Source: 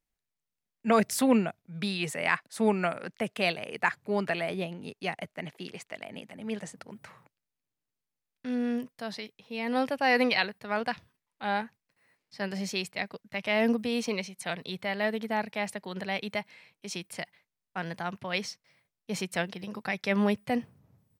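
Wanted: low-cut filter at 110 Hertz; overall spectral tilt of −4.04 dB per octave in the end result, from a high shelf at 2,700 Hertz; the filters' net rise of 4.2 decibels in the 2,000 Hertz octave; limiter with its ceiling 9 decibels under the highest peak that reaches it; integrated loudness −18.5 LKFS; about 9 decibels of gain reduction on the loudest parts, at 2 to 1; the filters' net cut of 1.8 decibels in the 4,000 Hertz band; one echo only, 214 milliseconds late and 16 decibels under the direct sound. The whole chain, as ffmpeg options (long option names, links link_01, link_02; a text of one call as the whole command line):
ffmpeg -i in.wav -af "highpass=110,equalizer=frequency=2000:width_type=o:gain=5.5,highshelf=frequency=2700:gain=3,equalizer=frequency=4000:width_type=o:gain=-7.5,acompressor=threshold=-34dB:ratio=2,alimiter=level_in=1dB:limit=-24dB:level=0:latency=1,volume=-1dB,aecho=1:1:214:0.158,volume=19.5dB" out.wav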